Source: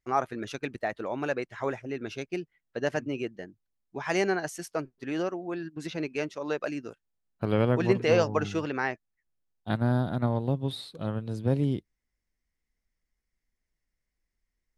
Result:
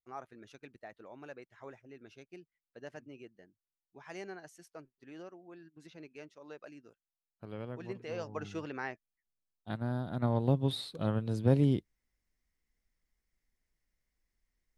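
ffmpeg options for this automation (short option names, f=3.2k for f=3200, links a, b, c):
-af "afade=t=in:st=8.13:d=0.46:silence=0.375837,afade=t=in:st=10.06:d=0.42:silence=0.334965"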